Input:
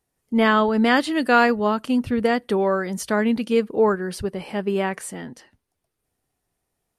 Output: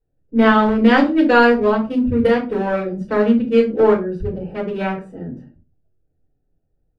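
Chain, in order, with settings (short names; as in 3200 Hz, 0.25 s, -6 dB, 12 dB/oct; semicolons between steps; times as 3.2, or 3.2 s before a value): Wiener smoothing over 41 samples; high shelf 8700 Hz -11.5 dB; shoebox room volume 120 m³, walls furnished, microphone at 4.7 m; gain -6 dB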